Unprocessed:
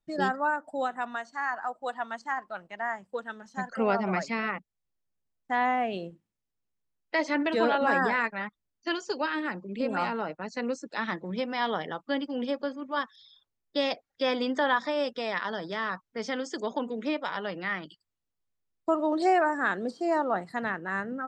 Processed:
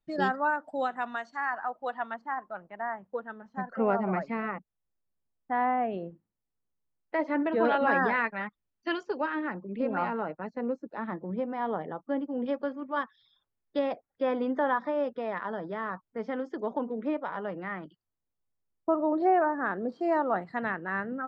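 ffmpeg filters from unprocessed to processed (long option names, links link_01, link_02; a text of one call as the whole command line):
ffmpeg -i in.wav -af "asetnsamples=nb_out_samples=441:pad=0,asendcmd='1.37 lowpass f 2800;2.14 lowpass f 1400;7.65 lowpass f 2800;9.03 lowpass f 1700;10.5 lowpass f 1000;12.46 lowpass f 2000;13.79 lowpass f 1300;19.92 lowpass f 2700',lowpass=4500" out.wav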